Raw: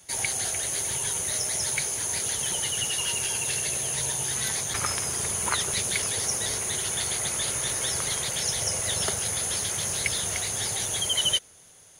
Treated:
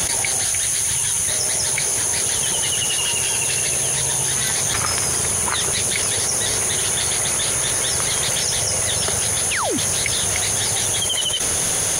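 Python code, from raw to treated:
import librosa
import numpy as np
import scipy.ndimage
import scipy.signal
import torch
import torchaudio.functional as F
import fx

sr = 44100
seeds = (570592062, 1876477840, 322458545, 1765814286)

y = fx.peak_eq(x, sr, hz=490.0, db=-9.0, octaves=2.0, at=(0.43, 1.28))
y = fx.spec_paint(y, sr, seeds[0], shape='fall', start_s=9.51, length_s=0.27, low_hz=220.0, high_hz=3100.0, level_db=-27.0)
y = fx.env_flatten(y, sr, amount_pct=100)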